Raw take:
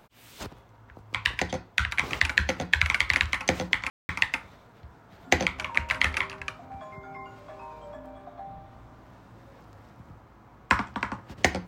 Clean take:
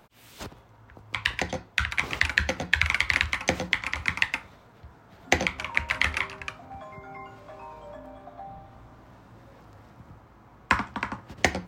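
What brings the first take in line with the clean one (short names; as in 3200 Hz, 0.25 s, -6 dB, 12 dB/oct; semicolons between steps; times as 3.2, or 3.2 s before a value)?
room tone fill 3.9–4.09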